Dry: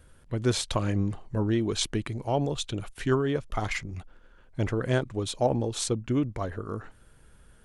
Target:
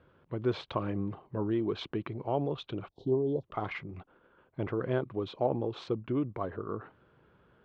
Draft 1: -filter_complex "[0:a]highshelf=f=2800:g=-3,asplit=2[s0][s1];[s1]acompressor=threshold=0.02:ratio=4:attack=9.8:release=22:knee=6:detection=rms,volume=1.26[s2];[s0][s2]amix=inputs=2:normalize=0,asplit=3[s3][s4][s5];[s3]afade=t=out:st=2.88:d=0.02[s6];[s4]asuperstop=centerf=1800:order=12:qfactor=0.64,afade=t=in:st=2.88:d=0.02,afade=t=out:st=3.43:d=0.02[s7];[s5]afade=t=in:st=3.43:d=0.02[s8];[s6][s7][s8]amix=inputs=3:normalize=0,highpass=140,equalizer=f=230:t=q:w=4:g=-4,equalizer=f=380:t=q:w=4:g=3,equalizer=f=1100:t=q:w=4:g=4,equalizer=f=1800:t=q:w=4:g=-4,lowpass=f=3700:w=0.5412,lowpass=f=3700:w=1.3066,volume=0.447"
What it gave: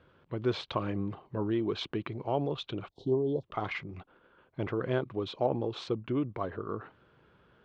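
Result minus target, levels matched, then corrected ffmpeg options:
4 kHz band +4.0 dB
-filter_complex "[0:a]highshelf=f=2800:g=-12,asplit=2[s0][s1];[s1]acompressor=threshold=0.02:ratio=4:attack=9.8:release=22:knee=6:detection=rms,volume=1.26[s2];[s0][s2]amix=inputs=2:normalize=0,asplit=3[s3][s4][s5];[s3]afade=t=out:st=2.88:d=0.02[s6];[s4]asuperstop=centerf=1800:order=12:qfactor=0.64,afade=t=in:st=2.88:d=0.02,afade=t=out:st=3.43:d=0.02[s7];[s5]afade=t=in:st=3.43:d=0.02[s8];[s6][s7][s8]amix=inputs=3:normalize=0,highpass=140,equalizer=f=230:t=q:w=4:g=-4,equalizer=f=380:t=q:w=4:g=3,equalizer=f=1100:t=q:w=4:g=4,equalizer=f=1800:t=q:w=4:g=-4,lowpass=f=3700:w=0.5412,lowpass=f=3700:w=1.3066,volume=0.447"

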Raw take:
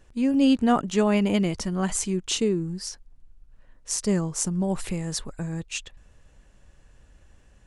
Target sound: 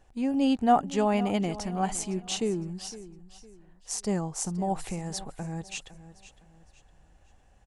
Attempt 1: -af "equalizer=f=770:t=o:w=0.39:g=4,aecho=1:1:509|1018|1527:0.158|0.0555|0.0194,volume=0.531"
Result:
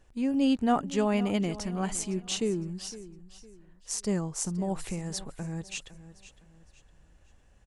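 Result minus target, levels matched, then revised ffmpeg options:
1 kHz band -5.0 dB
-af "equalizer=f=770:t=o:w=0.39:g=13,aecho=1:1:509|1018|1527:0.158|0.0555|0.0194,volume=0.531"

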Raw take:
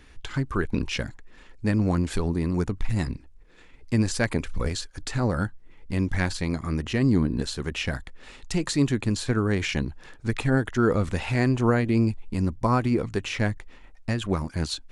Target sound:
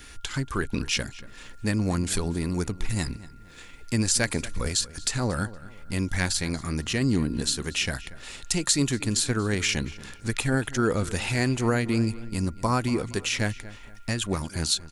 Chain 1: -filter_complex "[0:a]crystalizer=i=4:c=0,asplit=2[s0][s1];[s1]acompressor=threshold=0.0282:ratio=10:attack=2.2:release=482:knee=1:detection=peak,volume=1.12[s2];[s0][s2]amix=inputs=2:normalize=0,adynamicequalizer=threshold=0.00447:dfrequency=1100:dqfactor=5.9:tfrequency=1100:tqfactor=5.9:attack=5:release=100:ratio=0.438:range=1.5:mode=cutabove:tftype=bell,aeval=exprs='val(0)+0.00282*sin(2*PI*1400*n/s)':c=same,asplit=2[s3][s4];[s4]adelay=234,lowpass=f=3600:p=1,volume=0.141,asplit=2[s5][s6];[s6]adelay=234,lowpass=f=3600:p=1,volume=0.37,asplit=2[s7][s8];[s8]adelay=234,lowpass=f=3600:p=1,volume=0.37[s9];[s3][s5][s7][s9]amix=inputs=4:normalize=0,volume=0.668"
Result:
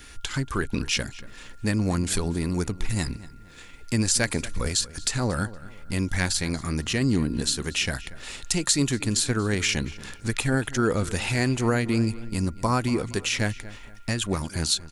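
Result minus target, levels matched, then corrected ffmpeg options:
compression: peak gain reduction -8 dB
-filter_complex "[0:a]crystalizer=i=4:c=0,asplit=2[s0][s1];[s1]acompressor=threshold=0.01:ratio=10:attack=2.2:release=482:knee=1:detection=peak,volume=1.12[s2];[s0][s2]amix=inputs=2:normalize=0,adynamicequalizer=threshold=0.00447:dfrequency=1100:dqfactor=5.9:tfrequency=1100:tqfactor=5.9:attack=5:release=100:ratio=0.438:range=1.5:mode=cutabove:tftype=bell,aeval=exprs='val(0)+0.00282*sin(2*PI*1400*n/s)':c=same,asplit=2[s3][s4];[s4]adelay=234,lowpass=f=3600:p=1,volume=0.141,asplit=2[s5][s6];[s6]adelay=234,lowpass=f=3600:p=1,volume=0.37,asplit=2[s7][s8];[s8]adelay=234,lowpass=f=3600:p=1,volume=0.37[s9];[s3][s5][s7][s9]amix=inputs=4:normalize=0,volume=0.668"

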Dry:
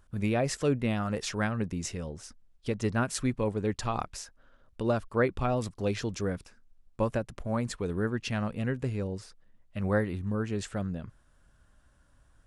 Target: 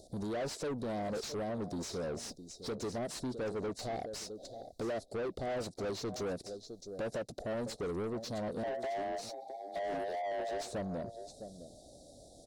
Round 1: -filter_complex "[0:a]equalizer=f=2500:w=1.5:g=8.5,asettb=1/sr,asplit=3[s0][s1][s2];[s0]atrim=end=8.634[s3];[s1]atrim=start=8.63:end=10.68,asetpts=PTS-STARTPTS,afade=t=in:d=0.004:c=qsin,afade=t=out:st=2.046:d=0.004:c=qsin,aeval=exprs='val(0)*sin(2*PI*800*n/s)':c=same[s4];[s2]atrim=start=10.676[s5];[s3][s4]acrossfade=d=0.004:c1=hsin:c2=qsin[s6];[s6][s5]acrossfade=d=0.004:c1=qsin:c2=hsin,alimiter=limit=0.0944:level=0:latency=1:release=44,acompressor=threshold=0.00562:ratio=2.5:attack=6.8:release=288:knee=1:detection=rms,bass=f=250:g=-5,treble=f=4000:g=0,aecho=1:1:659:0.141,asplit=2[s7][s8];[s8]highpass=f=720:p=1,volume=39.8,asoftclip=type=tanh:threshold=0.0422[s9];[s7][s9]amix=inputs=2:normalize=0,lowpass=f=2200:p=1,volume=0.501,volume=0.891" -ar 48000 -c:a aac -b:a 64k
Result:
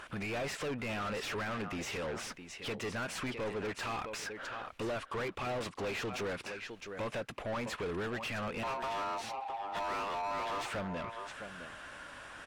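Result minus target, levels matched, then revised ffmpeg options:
2 kHz band +8.5 dB
-filter_complex "[0:a]equalizer=f=2500:w=1.5:g=8.5,asettb=1/sr,asplit=3[s0][s1][s2];[s0]atrim=end=8.634[s3];[s1]atrim=start=8.63:end=10.68,asetpts=PTS-STARTPTS,afade=t=in:d=0.004:c=qsin,afade=t=out:st=2.046:d=0.004:c=qsin,aeval=exprs='val(0)*sin(2*PI*800*n/s)':c=same[s4];[s2]atrim=start=10.676[s5];[s3][s4]acrossfade=d=0.004:c1=hsin:c2=qsin[s6];[s6][s5]acrossfade=d=0.004:c1=qsin:c2=hsin,alimiter=limit=0.0944:level=0:latency=1:release=44,acompressor=threshold=0.00562:ratio=2.5:attack=6.8:release=288:knee=1:detection=rms,asuperstop=centerf=1700:order=20:qfactor=0.54,bass=f=250:g=-5,treble=f=4000:g=0,aecho=1:1:659:0.141,asplit=2[s7][s8];[s8]highpass=f=720:p=1,volume=39.8,asoftclip=type=tanh:threshold=0.0422[s9];[s7][s9]amix=inputs=2:normalize=0,lowpass=f=2200:p=1,volume=0.501,volume=0.891" -ar 48000 -c:a aac -b:a 64k

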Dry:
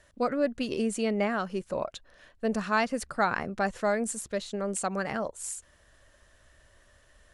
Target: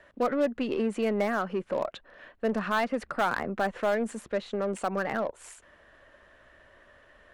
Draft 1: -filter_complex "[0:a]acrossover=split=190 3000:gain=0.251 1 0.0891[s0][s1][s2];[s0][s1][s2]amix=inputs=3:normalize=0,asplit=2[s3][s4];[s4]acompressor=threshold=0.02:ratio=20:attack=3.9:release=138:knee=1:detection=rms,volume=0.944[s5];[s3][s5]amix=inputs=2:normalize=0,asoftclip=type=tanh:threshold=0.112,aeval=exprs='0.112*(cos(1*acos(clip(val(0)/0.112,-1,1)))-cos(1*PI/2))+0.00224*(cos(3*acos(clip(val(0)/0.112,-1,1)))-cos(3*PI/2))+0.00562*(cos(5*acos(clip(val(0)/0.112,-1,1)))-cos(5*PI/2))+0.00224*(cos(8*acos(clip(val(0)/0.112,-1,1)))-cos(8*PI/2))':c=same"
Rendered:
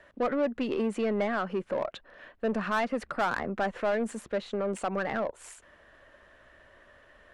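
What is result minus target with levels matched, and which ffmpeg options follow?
saturation: distortion +15 dB
-filter_complex "[0:a]acrossover=split=190 3000:gain=0.251 1 0.0891[s0][s1][s2];[s0][s1][s2]amix=inputs=3:normalize=0,asplit=2[s3][s4];[s4]acompressor=threshold=0.02:ratio=20:attack=3.9:release=138:knee=1:detection=rms,volume=0.944[s5];[s3][s5]amix=inputs=2:normalize=0,asoftclip=type=tanh:threshold=0.355,aeval=exprs='0.112*(cos(1*acos(clip(val(0)/0.112,-1,1)))-cos(1*PI/2))+0.00224*(cos(3*acos(clip(val(0)/0.112,-1,1)))-cos(3*PI/2))+0.00562*(cos(5*acos(clip(val(0)/0.112,-1,1)))-cos(5*PI/2))+0.00224*(cos(8*acos(clip(val(0)/0.112,-1,1)))-cos(8*PI/2))':c=same"

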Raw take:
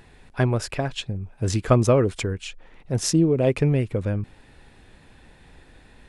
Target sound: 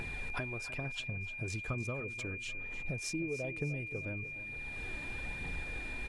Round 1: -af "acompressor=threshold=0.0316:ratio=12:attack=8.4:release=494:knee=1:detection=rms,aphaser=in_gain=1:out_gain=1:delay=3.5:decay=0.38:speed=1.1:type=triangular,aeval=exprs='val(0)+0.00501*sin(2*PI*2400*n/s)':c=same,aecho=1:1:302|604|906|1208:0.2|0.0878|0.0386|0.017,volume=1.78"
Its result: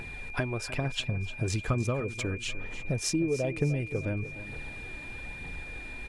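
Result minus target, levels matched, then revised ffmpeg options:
compression: peak gain reduction -9.5 dB
-af "acompressor=threshold=0.00944:ratio=12:attack=8.4:release=494:knee=1:detection=rms,aphaser=in_gain=1:out_gain=1:delay=3.5:decay=0.38:speed=1.1:type=triangular,aeval=exprs='val(0)+0.00501*sin(2*PI*2400*n/s)':c=same,aecho=1:1:302|604|906|1208:0.2|0.0878|0.0386|0.017,volume=1.78"

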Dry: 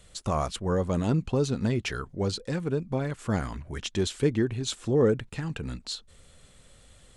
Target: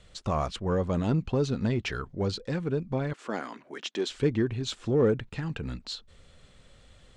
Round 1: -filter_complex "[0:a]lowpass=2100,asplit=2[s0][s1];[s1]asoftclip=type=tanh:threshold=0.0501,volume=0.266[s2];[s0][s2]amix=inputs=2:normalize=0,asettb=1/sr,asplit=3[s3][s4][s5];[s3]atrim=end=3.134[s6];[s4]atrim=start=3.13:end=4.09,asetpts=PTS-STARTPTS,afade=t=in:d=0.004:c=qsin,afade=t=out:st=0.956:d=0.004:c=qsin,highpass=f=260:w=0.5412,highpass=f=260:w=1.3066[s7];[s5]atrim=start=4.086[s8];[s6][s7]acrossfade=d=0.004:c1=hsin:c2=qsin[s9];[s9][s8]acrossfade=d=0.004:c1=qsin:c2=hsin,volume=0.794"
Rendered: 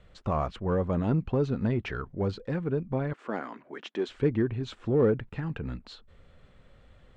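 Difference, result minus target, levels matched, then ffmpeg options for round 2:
4 kHz band -9.0 dB
-filter_complex "[0:a]lowpass=5200,asplit=2[s0][s1];[s1]asoftclip=type=tanh:threshold=0.0501,volume=0.266[s2];[s0][s2]amix=inputs=2:normalize=0,asettb=1/sr,asplit=3[s3][s4][s5];[s3]atrim=end=3.134[s6];[s4]atrim=start=3.13:end=4.09,asetpts=PTS-STARTPTS,afade=t=in:d=0.004:c=qsin,afade=t=out:st=0.956:d=0.004:c=qsin,highpass=f=260:w=0.5412,highpass=f=260:w=1.3066[s7];[s5]atrim=start=4.086[s8];[s6][s7]acrossfade=d=0.004:c1=hsin:c2=qsin[s9];[s9][s8]acrossfade=d=0.004:c1=qsin:c2=hsin,volume=0.794"

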